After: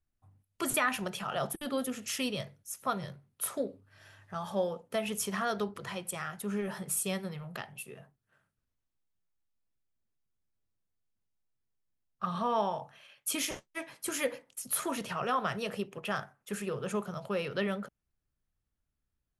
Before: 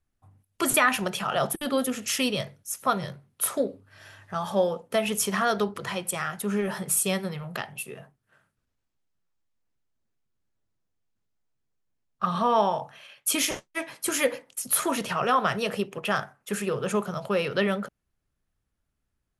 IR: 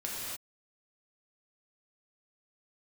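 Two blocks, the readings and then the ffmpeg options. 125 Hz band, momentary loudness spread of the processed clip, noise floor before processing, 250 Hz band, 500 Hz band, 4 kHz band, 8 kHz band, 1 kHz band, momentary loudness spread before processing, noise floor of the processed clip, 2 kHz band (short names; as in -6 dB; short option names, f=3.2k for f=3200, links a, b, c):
-6.0 dB, 10 LU, -79 dBFS, -7.0 dB, -7.5 dB, -8.0 dB, -8.0 dB, -8.0 dB, 11 LU, -84 dBFS, -8.0 dB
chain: -af "lowshelf=f=150:g=4,volume=-8dB"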